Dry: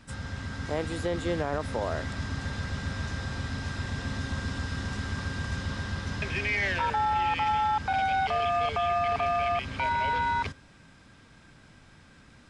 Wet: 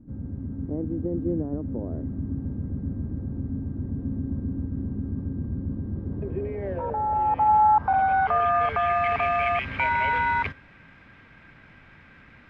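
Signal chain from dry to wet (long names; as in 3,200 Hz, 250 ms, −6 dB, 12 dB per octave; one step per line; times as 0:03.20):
variable-slope delta modulation 64 kbit/s
low-pass filter sweep 290 Hz → 2,200 Hz, 0:05.82–0:09.12
level +1.5 dB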